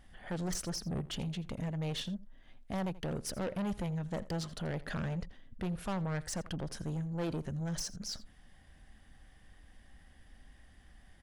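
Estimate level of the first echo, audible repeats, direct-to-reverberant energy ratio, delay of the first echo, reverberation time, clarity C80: −19.0 dB, 1, no reverb audible, 83 ms, no reverb audible, no reverb audible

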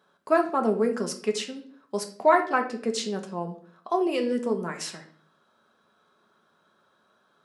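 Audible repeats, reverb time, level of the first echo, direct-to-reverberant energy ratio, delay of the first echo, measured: no echo audible, 0.50 s, no echo audible, 3.5 dB, no echo audible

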